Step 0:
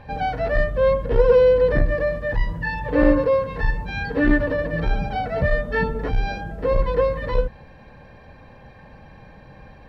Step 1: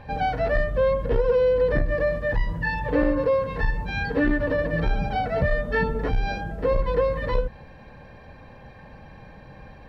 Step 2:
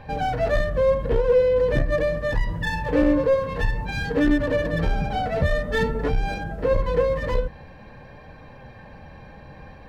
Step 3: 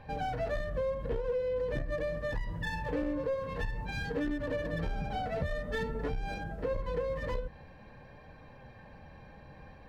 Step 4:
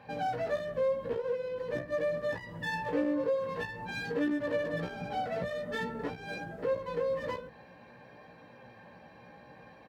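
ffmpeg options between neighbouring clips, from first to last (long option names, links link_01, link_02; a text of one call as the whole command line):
ffmpeg -i in.wav -af "acompressor=threshold=-17dB:ratio=6" out.wav
ffmpeg -i in.wav -filter_complex "[0:a]flanger=delay=6.4:depth=7.1:regen=70:speed=0.48:shape=sinusoidal,acrossover=split=690[link_01][link_02];[link_02]aeval=exprs='clip(val(0),-1,0.0112)':channel_layout=same[link_03];[link_01][link_03]amix=inputs=2:normalize=0,volume=6dB" out.wav
ffmpeg -i in.wav -af "acompressor=threshold=-21dB:ratio=6,volume=-8.5dB" out.wav
ffmpeg -i in.wav -filter_complex "[0:a]highpass=180,asplit=2[link_01][link_02];[link_02]adelay=17,volume=-4dB[link_03];[link_01][link_03]amix=inputs=2:normalize=0" out.wav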